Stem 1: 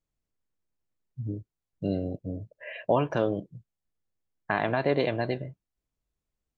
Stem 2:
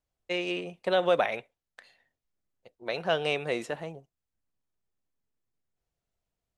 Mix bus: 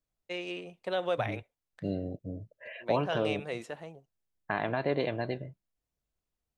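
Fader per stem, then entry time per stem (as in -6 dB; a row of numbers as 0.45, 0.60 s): -4.5, -6.5 dB; 0.00, 0.00 s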